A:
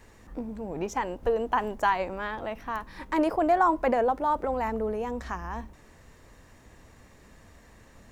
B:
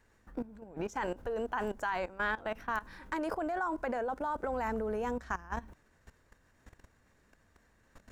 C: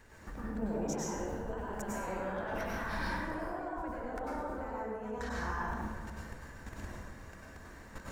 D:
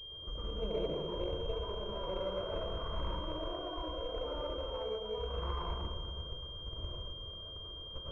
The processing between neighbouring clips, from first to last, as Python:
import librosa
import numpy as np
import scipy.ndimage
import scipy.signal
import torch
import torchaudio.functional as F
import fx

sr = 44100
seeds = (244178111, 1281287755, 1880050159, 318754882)

y1 = fx.dynamic_eq(x, sr, hz=7600.0, q=1.1, threshold_db=-55.0, ratio=4.0, max_db=5)
y1 = fx.level_steps(y1, sr, step_db=17)
y1 = fx.peak_eq(y1, sr, hz=1500.0, db=8.5, octaves=0.29)
y2 = fx.over_compress(y1, sr, threshold_db=-45.0, ratio=-1.0)
y2 = fx.rev_plate(y2, sr, seeds[0], rt60_s=1.6, hf_ratio=0.5, predelay_ms=85, drr_db=-6.0)
y3 = scipy.signal.medfilt(y2, 25)
y3 = fx.fixed_phaser(y3, sr, hz=1200.0, stages=8)
y3 = fx.pwm(y3, sr, carrier_hz=3200.0)
y3 = y3 * 10.0 ** (4.0 / 20.0)